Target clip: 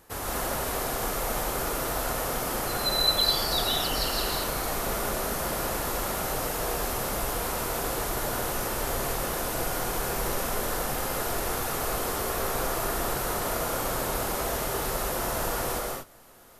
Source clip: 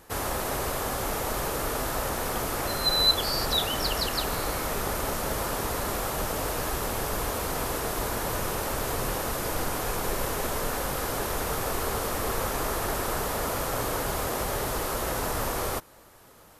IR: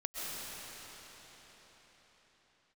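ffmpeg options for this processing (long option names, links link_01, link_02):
-filter_complex "[0:a]highshelf=frequency=11000:gain=4[link_01];[1:a]atrim=start_sample=2205,afade=type=out:start_time=0.32:duration=0.01,atrim=end_sample=14553,asetrate=48510,aresample=44100[link_02];[link_01][link_02]afir=irnorm=-1:irlink=0"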